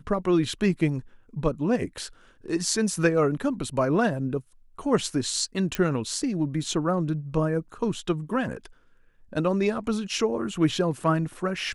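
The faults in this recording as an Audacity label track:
5.750000	5.750000	pop -12 dBFS

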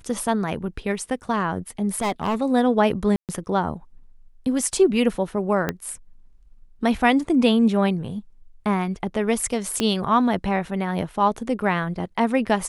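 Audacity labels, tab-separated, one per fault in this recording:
1.950000	2.410000	clipped -19 dBFS
3.160000	3.290000	gap 0.128 s
5.690000	5.690000	pop -9 dBFS
9.800000	9.800000	pop -8 dBFS

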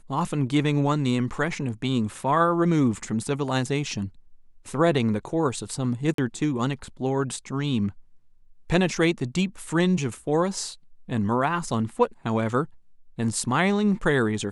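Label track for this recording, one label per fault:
6.140000	6.180000	gap 43 ms

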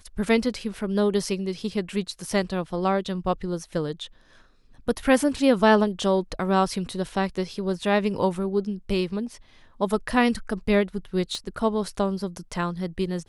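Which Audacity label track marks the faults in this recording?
11.350000	11.350000	pop -20 dBFS

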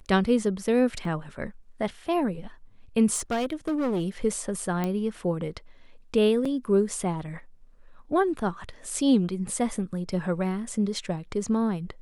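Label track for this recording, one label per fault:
1.050000	1.050000	gap 2.3 ms
3.140000	4.080000	clipped -23 dBFS
4.840000	4.840000	pop -15 dBFS
6.450000	6.450000	gap 4.6 ms

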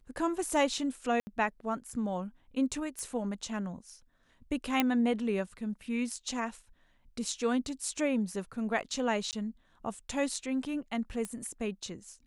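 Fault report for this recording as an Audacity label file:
1.200000	1.270000	gap 70 ms
2.990000	2.990000	pop -26 dBFS
4.800000	4.800000	pop -11 dBFS
9.310000	9.330000	gap 18 ms
11.250000	11.250000	pop -23 dBFS

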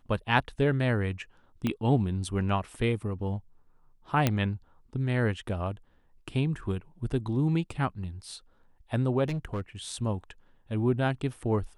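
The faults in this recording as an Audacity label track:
1.670000	1.670000	pop -16 dBFS
4.270000	4.270000	pop -9 dBFS
9.240000	9.610000	clipped -27.5 dBFS

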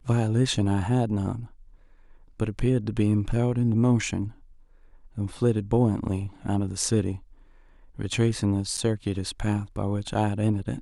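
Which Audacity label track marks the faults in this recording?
8.770000	8.780000	gap 7.5 ms

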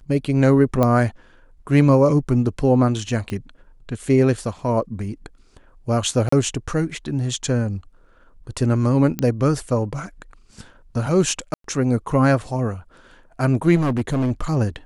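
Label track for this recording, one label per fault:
0.830000	0.830000	pop -7 dBFS
3.300000	3.300000	pop -16 dBFS
6.290000	6.320000	gap 34 ms
9.190000	9.190000	pop -9 dBFS
11.540000	11.640000	gap 0.103 s
13.750000	14.310000	clipped -17 dBFS

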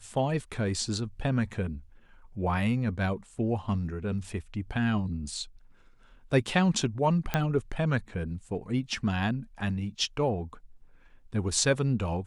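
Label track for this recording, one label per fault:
7.340000	7.340000	pop -12 dBFS

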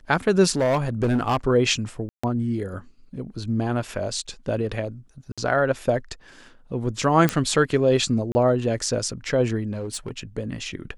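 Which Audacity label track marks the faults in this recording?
0.520000	1.370000	clipped -16.5 dBFS
2.090000	2.230000	gap 0.145 s
5.320000	5.380000	gap 56 ms
7.290000	7.290000	pop -6 dBFS
8.320000	8.350000	gap 30 ms
9.710000	10.180000	clipped -25 dBFS

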